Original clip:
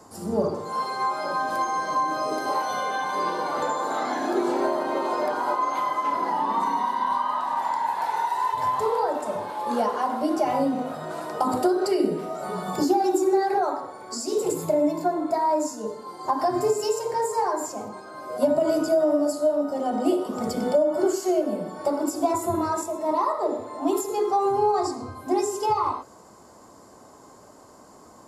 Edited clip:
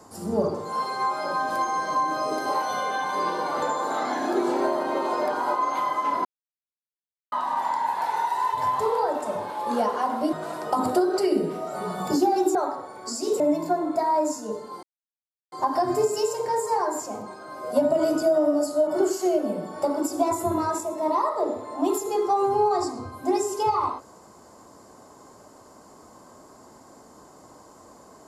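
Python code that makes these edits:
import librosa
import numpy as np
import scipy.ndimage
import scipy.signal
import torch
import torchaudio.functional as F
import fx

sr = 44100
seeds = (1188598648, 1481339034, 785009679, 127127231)

y = fx.edit(x, sr, fx.silence(start_s=6.25, length_s=1.07),
    fx.cut(start_s=10.33, length_s=0.68),
    fx.cut(start_s=13.23, length_s=0.37),
    fx.cut(start_s=14.45, length_s=0.3),
    fx.insert_silence(at_s=16.18, length_s=0.69),
    fx.cut(start_s=19.53, length_s=1.37), tone=tone)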